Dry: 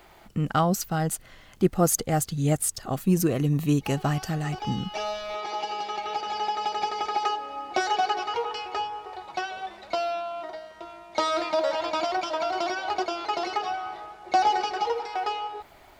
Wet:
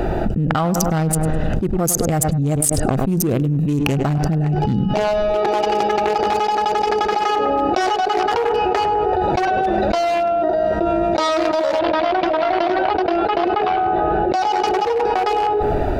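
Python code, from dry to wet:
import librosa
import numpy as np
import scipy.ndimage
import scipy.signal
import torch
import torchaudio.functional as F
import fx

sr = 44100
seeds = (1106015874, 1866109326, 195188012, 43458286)

y = fx.wiener(x, sr, points=41)
y = fx.lowpass(y, sr, hz=4000.0, slope=24, at=(11.79, 14.33))
y = fx.echo_tape(y, sr, ms=102, feedback_pct=53, wet_db=-15, lp_hz=1800.0, drive_db=8.0, wow_cents=8)
y = fx.env_flatten(y, sr, amount_pct=100)
y = y * 10.0 ** (-1.5 / 20.0)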